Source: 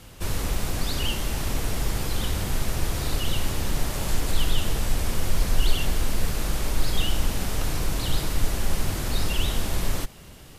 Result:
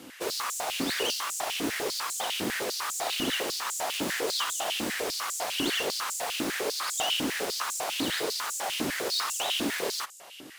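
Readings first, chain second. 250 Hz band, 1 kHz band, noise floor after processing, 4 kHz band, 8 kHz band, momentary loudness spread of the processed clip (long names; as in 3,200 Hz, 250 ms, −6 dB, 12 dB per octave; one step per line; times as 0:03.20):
−1.5 dB, +3.0 dB, −47 dBFS, +2.5 dB, +1.5 dB, 3 LU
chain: phase distortion by the signal itself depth 0.22 ms
high-pass on a step sequencer 10 Hz 280–7,200 Hz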